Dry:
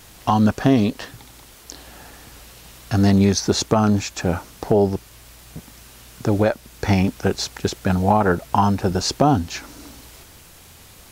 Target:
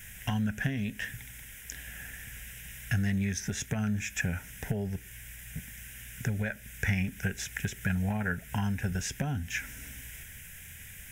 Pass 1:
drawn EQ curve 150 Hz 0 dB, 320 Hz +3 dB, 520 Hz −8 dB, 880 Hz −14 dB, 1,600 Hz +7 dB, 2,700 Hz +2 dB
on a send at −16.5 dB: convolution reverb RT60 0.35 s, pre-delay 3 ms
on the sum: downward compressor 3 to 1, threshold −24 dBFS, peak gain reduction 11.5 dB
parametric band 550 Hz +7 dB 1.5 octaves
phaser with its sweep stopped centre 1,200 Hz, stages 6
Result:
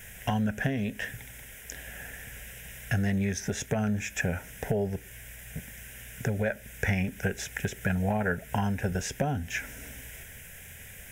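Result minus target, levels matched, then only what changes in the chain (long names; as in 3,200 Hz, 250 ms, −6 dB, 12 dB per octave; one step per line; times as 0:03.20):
500 Hz band +7.5 dB
change: parametric band 550 Hz −4.5 dB 1.5 octaves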